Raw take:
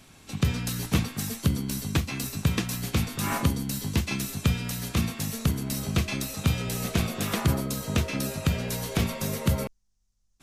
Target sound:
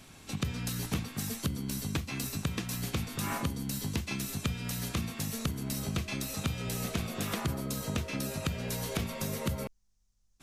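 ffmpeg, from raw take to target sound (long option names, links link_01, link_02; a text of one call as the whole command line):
ffmpeg -i in.wav -af "acompressor=threshold=-32dB:ratio=3" out.wav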